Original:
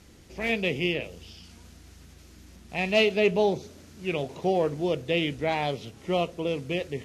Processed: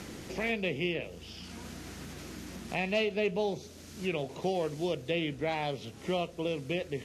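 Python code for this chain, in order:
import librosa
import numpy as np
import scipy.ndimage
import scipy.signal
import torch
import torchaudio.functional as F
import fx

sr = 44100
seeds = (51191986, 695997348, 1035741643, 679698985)

y = fx.band_squash(x, sr, depth_pct=70)
y = y * librosa.db_to_amplitude(-5.5)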